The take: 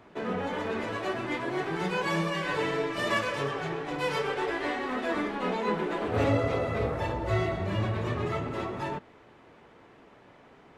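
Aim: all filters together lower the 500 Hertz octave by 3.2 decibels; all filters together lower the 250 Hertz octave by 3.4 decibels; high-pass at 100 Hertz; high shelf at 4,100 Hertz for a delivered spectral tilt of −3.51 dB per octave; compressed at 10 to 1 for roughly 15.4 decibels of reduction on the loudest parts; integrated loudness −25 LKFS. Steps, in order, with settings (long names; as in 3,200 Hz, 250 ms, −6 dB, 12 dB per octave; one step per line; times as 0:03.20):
high-pass filter 100 Hz
parametric band 250 Hz −3.5 dB
parametric band 500 Hz −3 dB
high-shelf EQ 4,100 Hz +3.5 dB
downward compressor 10 to 1, threshold −40 dBFS
level +18 dB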